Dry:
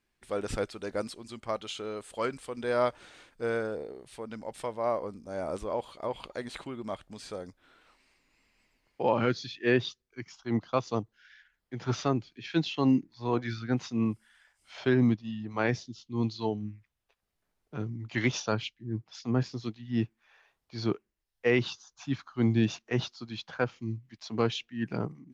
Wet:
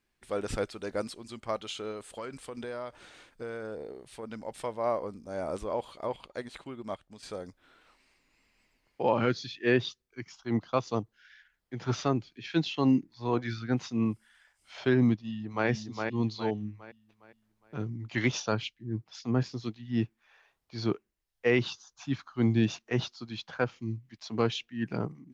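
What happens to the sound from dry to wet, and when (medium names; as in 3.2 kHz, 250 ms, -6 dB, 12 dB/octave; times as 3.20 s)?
1.91–4.23 s: compression 5:1, threshold -35 dBFS
6.16–7.23 s: upward expansion, over -51 dBFS
15.16–15.68 s: echo throw 410 ms, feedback 40%, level -4.5 dB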